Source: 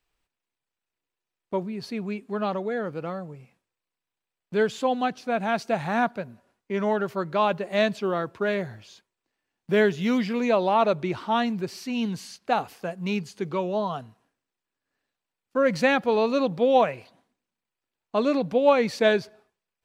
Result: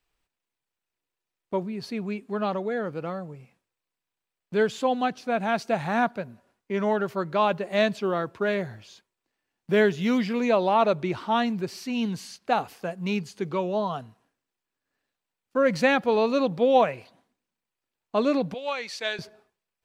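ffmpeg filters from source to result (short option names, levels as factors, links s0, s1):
-filter_complex "[0:a]asettb=1/sr,asplit=3[s0][s1][s2];[s0]atrim=end=18.544[s3];[s1]atrim=start=18.54:end=19.19,asetpts=PTS-STARTPTS,afade=t=in:d=0.004:c=qsin,afade=t=out:st=0.646:d=0.004:c=qsin,bandpass=f=4800:t=q:w=0.54[s4];[s2]atrim=start=19.186[s5];[s3][s4]acrossfade=d=0.004:c1=hsin:c2=qsin[s6];[s6][s5]acrossfade=d=0.004:c1=qsin:c2=hsin"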